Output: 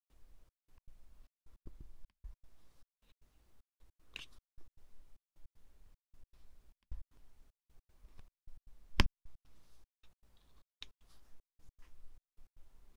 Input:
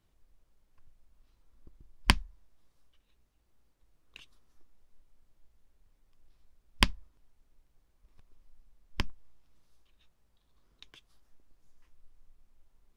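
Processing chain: trance gate ".xxxx..x" 154 bpm -60 dB; trim +3.5 dB

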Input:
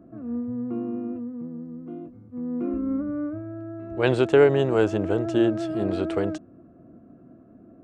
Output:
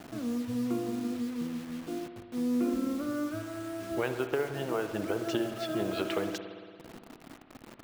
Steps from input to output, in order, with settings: high-pass 57 Hz 6 dB/octave, from 2.21 s 140 Hz; reverb removal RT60 0.87 s; low-pass that closes with the level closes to 1.8 kHz, closed at -21 dBFS; tilt shelf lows -6 dB, about 1.4 kHz; compression 12:1, threshold -35 dBFS, peak gain reduction 18 dB; bit crusher 9-bit; spring tank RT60 2 s, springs 57 ms, chirp 25 ms, DRR 7 dB; trim +7 dB

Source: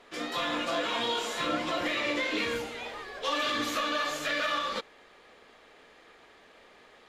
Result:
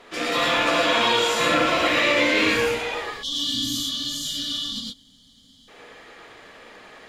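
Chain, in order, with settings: rattle on loud lows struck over -45 dBFS, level -26 dBFS; time-frequency box 3.11–5.68 s, 300–2900 Hz -29 dB; gated-style reverb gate 140 ms rising, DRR -1.5 dB; trim +7 dB

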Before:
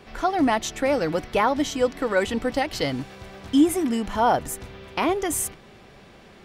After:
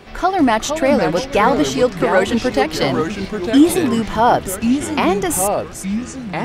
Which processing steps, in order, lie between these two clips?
ever faster or slower copies 418 ms, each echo -3 st, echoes 3, each echo -6 dB; trim +6.5 dB

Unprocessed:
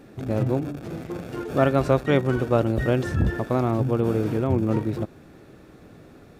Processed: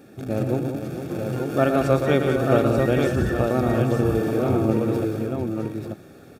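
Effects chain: treble shelf 7.5 kHz +8 dB; comb of notches 1 kHz; on a send: multi-tap echo 115/183/453/821/888 ms -7.5/-8/-10/-11.5/-4 dB

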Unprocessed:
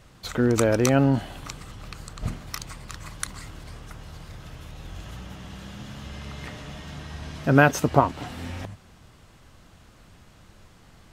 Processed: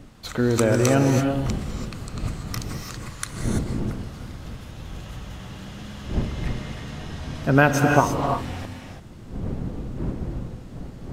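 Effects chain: wind noise 190 Hz -34 dBFS; gated-style reverb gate 360 ms rising, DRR 3 dB

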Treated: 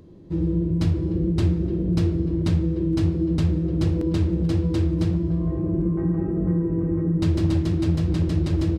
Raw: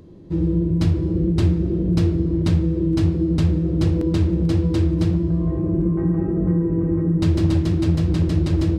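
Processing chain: speakerphone echo 300 ms, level -19 dB; trim -3 dB

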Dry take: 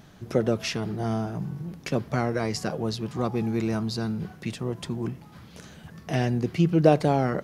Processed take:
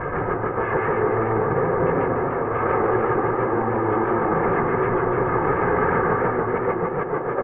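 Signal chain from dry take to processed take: one-bit delta coder 16 kbps, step -19 dBFS; low-pass 1.4 kHz 24 dB/octave; comb 2.4 ms, depth 73%; compressor with a negative ratio -26 dBFS, ratio -0.5; reverberation RT60 0.45 s, pre-delay 122 ms, DRR 0 dB; modulated delay 147 ms, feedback 75%, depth 129 cents, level -5 dB; trim -7 dB

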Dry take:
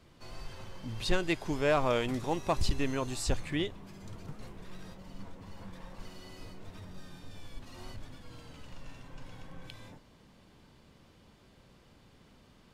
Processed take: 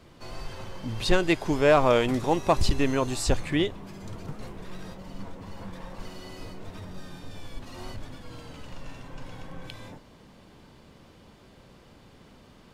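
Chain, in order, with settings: peaking EQ 540 Hz +3 dB 2.8 oct; trim +5.5 dB

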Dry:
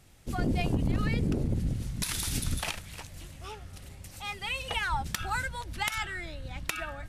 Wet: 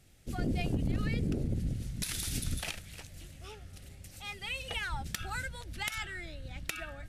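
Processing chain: peaking EQ 1 kHz -9.5 dB 0.61 oct; trim -3.5 dB

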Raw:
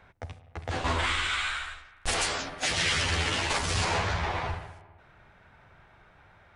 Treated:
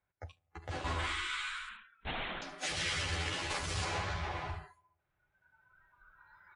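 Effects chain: recorder AGC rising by 5.8 dB/s; comb of notches 230 Hz; 1.69–2.42 s: LPC vocoder at 8 kHz whisper; on a send: delay 74 ms -12.5 dB; on the sum: spectral noise reduction 21 dB; trim -7.5 dB

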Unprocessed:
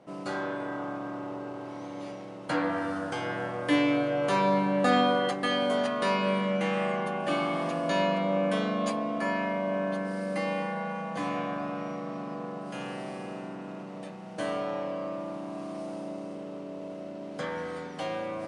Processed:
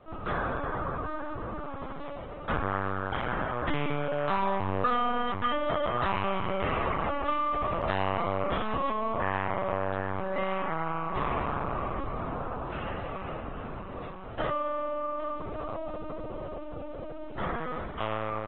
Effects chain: peaking EQ 1.2 kHz +9 dB 0.43 oct; on a send: feedback delay 801 ms, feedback 21%, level -13 dB; on the sum: compression 2.5:1, threshold -27 dBFS, peak gain reduction 7.5 dB; hum notches 60/120/180/240 Hz; LPC vocoder at 8 kHz pitch kept; AAC 24 kbps 44.1 kHz

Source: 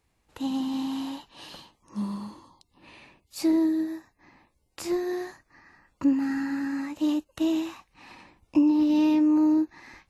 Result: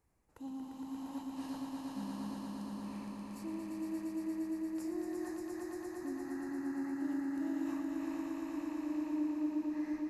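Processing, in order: peaking EQ 3.4 kHz -14 dB 1.1 oct; reverse; compression 4:1, threshold -39 dBFS, peak gain reduction 18.5 dB; reverse; echo with a slow build-up 116 ms, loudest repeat 5, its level -4 dB; trim -4.5 dB

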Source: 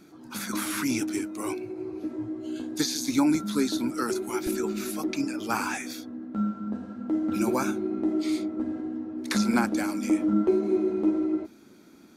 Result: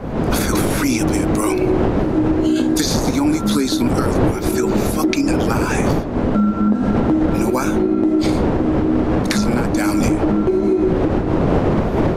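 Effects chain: wind noise 400 Hz -24 dBFS; recorder AGC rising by 77 dB/s; trim -1.5 dB

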